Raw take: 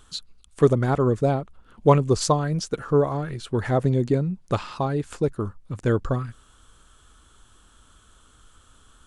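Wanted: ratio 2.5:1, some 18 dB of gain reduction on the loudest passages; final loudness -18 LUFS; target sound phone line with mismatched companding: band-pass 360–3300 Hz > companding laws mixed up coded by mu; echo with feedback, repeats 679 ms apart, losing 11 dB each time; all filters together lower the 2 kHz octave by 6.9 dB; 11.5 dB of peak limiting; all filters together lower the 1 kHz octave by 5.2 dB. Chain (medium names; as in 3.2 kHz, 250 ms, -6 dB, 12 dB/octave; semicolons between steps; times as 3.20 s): peaking EQ 1 kHz -5 dB; peaking EQ 2 kHz -7 dB; compression 2.5:1, threshold -40 dBFS; peak limiter -32.5 dBFS; band-pass 360–3300 Hz; feedback delay 679 ms, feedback 28%, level -11 dB; companding laws mixed up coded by mu; trim +26.5 dB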